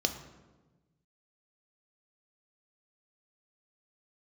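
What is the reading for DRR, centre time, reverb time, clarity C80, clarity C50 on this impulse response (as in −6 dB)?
6.0 dB, 16 ms, 1.2 s, 12.0 dB, 10.0 dB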